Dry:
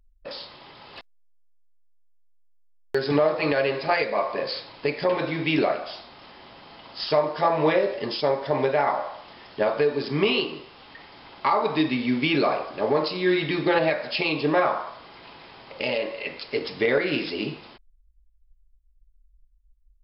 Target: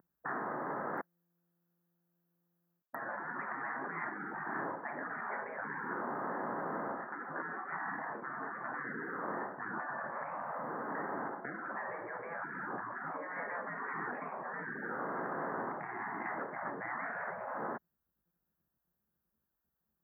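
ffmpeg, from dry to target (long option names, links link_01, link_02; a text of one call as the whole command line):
ffmpeg -i in.wav -af "areverse,acompressor=threshold=-30dB:ratio=12,areverse,asuperstop=centerf=4900:order=20:qfactor=0.51,afftfilt=real='re*lt(hypot(re,im),0.02)':imag='im*lt(hypot(re,im),0.02)':win_size=1024:overlap=0.75,highpass=frequency=170:width=0.5412,highpass=frequency=170:width=1.3066,volume=12dB" out.wav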